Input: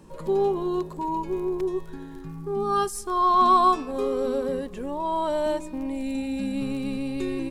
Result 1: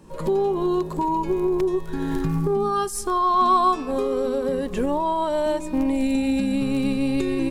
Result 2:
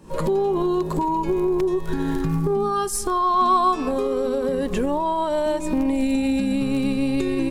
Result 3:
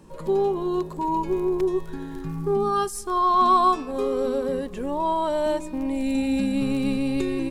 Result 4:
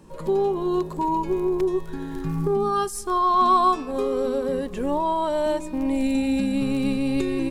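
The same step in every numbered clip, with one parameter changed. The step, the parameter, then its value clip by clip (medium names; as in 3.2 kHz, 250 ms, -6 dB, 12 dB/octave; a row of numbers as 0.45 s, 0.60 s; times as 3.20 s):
recorder AGC, rising by: 35 dB/s, 87 dB/s, 5.2 dB/s, 13 dB/s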